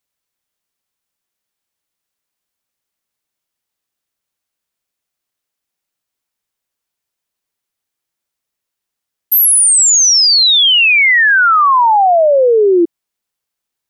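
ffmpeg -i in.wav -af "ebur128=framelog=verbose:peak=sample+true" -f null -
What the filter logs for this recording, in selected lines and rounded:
Integrated loudness:
  I:          -7.4 LUFS
  Threshold: -17.5 LUFS
Loudness range:
  LRA:         6.9 LU
  Threshold: -28.7 LUFS
  LRA low:   -13.7 LUFS
  LRA high:   -6.9 LUFS
Sample peak:
  Peak:       -6.1 dBFS
True peak:
  Peak:       -6.1 dBFS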